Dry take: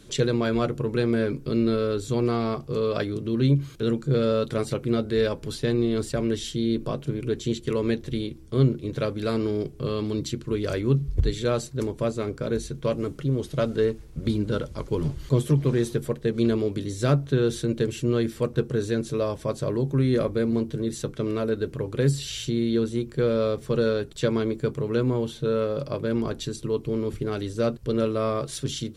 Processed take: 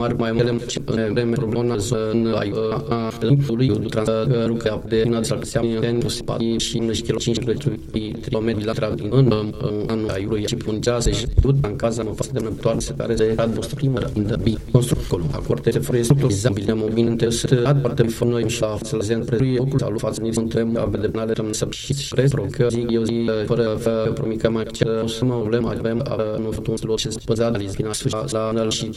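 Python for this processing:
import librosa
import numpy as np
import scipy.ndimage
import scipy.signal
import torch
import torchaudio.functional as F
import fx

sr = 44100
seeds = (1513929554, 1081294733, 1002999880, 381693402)

y = fx.block_reorder(x, sr, ms=194.0, group=4)
y = y + 10.0 ** (-22.0 / 20.0) * np.pad(y, (int(218 * sr / 1000.0), 0))[:len(y)]
y = fx.transient(y, sr, attack_db=7, sustain_db=11)
y = F.gain(torch.from_numpy(y), 1.5).numpy()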